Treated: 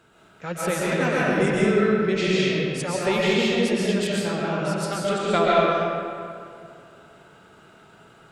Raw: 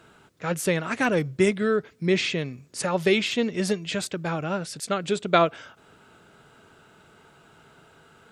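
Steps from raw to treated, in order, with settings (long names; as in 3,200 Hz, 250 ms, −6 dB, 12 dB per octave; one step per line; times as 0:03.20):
one-sided soft clipper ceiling −5 dBFS
comb and all-pass reverb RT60 2.4 s, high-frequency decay 0.6×, pre-delay 90 ms, DRR −6.5 dB
level −4 dB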